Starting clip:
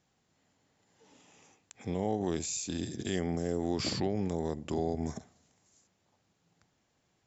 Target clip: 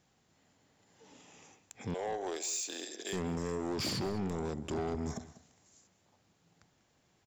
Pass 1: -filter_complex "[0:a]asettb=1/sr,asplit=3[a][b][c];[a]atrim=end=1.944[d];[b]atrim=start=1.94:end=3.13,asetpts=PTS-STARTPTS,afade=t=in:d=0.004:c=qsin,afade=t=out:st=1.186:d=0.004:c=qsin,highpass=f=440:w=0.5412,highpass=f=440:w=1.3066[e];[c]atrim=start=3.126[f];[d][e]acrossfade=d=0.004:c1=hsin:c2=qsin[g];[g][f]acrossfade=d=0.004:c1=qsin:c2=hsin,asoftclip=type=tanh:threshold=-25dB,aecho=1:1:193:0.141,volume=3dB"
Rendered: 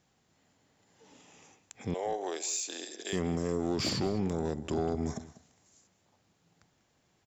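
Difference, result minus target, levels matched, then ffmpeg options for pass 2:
soft clip: distortion -8 dB
-filter_complex "[0:a]asettb=1/sr,asplit=3[a][b][c];[a]atrim=end=1.944[d];[b]atrim=start=1.94:end=3.13,asetpts=PTS-STARTPTS,afade=t=in:d=0.004:c=qsin,afade=t=out:st=1.186:d=0.004:c=qsin,highpass=f=440:w=0.5412,highpass=f=440:w=1.3066[e];[c]atrim=start=3.126[f];[d][e]acrossfade=d=0.004:c1=hsin:c2=qsin[g];[g][f]acrossfade=d=0.004:c1=qsin:c2=hsin,asoftclip=type=tanh:threshold=-33.5dB,aecho=1:1:193:0.141,volume=3dB"

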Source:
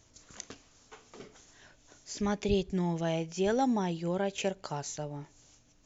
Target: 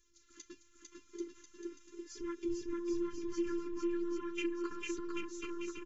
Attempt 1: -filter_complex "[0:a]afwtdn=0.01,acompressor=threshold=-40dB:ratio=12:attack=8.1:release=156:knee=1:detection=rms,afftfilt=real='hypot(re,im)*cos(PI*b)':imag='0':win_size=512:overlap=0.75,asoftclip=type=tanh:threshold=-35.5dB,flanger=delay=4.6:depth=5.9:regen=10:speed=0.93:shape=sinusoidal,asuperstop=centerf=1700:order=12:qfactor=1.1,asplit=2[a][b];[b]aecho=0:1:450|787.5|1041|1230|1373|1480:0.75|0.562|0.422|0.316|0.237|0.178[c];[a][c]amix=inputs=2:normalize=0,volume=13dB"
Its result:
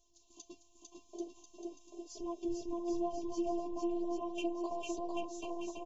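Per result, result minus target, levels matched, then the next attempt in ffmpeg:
soft clip: distortion +18 dB; 2000 Hz band -7.5 dB
-filter_complex "[0:a]afwtdn=0.01,acompressor=threshold=-40dB:ratio=12:attack=8.1:release=156:knee=1:detection=rms,afftfilt=real='hypot(re,im)*cos(PI*b)':imag='0':win_size=512:overlap=0.75,asoftclip=type=tanh:threshold=-26dB,flanger=delay=4.6:depth=5.9:regen=10:speed=0.93:shape=sinusoidal,asuperstop=centerf=1700:order=12:qfactor=1.1,asplit=2[a][b];[b]aecho=0:1:450|787.5|1041|1230|1373|1480:0.75|0.562|0.422|0.316|0.237|0.178[c];[a][c]amix=inputs=2:normalize=0,volume=13dB"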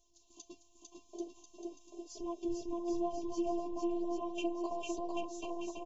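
2000 Hz band -7.0 dB
-filter_complex "[0:a]afwtdn=0.01,acompressor=threshold=-40dB:ratio=12:attack=8.1:release=156:knee=1:detection=rms,afftfilt=real='hypot(re,im)*cos(PI*b)':imag='0':win_size=512:overlap=0.75,asoftclip=type=tanh:threshold=-26dB,flanger=delay=4.6:depth=5.9:regen=10:speed=0.93:shape=sinusoidal,asuperstop=centerf=690:order=12:qfactor=1.1,asplit=2[a][b];[b]aecho=0:1:450|787.5|1041|1230|1373|1480:0.75|0.562|0.422|0.316|0.237|0.178[c];[a][c]amix=inputs=2:normalize=0,volume=13dB"

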